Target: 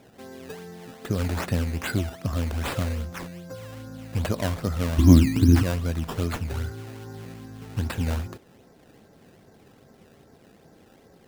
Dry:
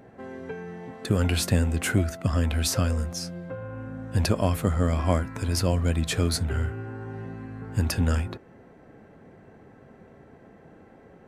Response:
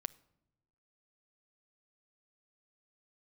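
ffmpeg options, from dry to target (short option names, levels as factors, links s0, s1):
-filter_complex "[0:a]asettb=1/sr,asplit=3[s0][s1][s2];[s0]atrim=end=4.984[s3];[s1]atrim=start=4.98:end=5.63,asetpts=PTS-STARTPTS,afade=t=in:d=0.004:c=qsin,afade=t=out:st=0.646:d=0.004:c=qsin,lowshelf=f=420:t=q:w=3:g=12[s4];[s2]atrim=start=5.626[s5];[s3][s4]acrossfade=d=0.004:c1=hsin:c2=qsin[s6];[s6][s5]acrossfade=d=0.004:c1=qsin:c2=hsin,acrusher=samples=14:mix=1:aa=0.000001:lfo=1:lforange=14:lforate=2.5,volume=0.708"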